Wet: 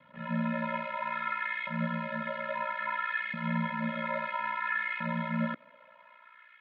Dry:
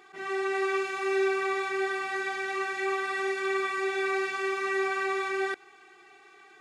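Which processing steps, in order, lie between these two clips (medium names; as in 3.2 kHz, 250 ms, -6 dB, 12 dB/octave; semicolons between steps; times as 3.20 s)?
ring modulator 30 Hz; LFO high-pass saw up 0.6 Hz 220–2500 Hz; mistuned SSB -190 Hz 340–3600 Hz; trim -2 dB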